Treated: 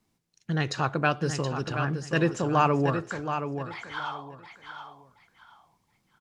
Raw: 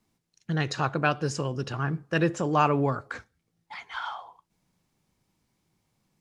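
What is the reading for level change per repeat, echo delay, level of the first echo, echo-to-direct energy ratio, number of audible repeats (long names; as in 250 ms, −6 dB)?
−12.5 dB, 724 ms, −8.0 dB, −7.5 dB, 3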